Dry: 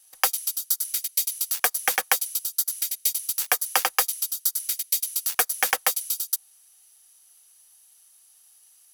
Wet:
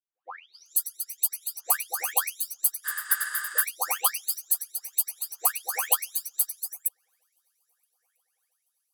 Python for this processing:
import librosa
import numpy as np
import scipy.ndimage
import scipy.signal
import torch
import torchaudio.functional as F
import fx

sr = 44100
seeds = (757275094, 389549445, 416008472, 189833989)

p1 = fx.spec_delay(x, sr, highs='late', ms=529)
p2 = scipy.signal.sosfilt(scipy.signal.butter(6, 370.0, 'highpass', fs=sr, output='sos'), p1)
p3 = p2 + fx.echo_swing(p2, sr, ms=1297, ratio=3, feedback_pct=48, wet_db=-23, dry=0)
p4 = fx.spec_repair(p3, sr, seeds[0], start_s=2.87, length_s=0.71, low_hz=660.0, high_hz=9500.0, source='after')
p5 = fx.upward_expand(p4, sr, threshold_db=-38.0, expansion=2.5)
y = F.gain(torch.from_numpy(p5), 2.5).numpy()